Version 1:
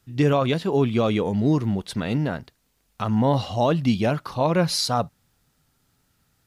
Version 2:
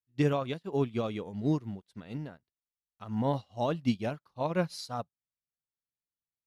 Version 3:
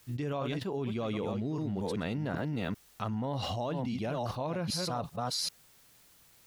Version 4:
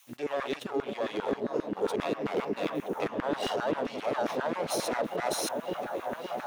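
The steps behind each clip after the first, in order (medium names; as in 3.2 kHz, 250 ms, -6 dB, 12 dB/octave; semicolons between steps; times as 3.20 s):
upward expansion 2.5:1, over -39 dBFS; trim -5.5 dB
chunks repeated in reverse 392 ms, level -12.5 dB; peak limiter -23 dBFS, peak gain reduction 6.5 dB; level flattener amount 100%; trim -5.5 dB
comb filter that takes the minimum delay 0.31 ms; on a send: delay with an opening low-pass 562 ms, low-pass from 400 Hz, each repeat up 1 oct, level 0 dB; on the sum: LFO high-pass saw down 7.5 Hz 280–1600 Hz; trim +2 dB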